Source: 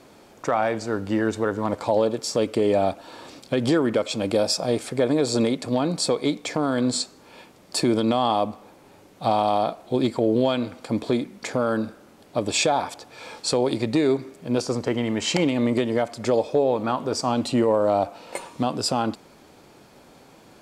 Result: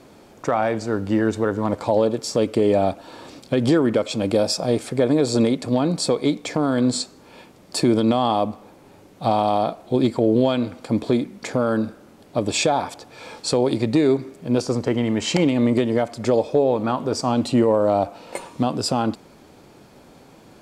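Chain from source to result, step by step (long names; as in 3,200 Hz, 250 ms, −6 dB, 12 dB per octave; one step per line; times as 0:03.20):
low-shelf EQ 440 Hz +5 dB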